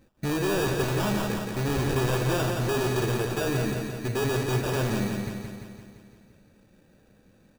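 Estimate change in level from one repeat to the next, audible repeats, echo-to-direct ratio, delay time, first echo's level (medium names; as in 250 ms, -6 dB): -4.5 dB, 7, -2.5 dB, 172 ms, -4.5 dB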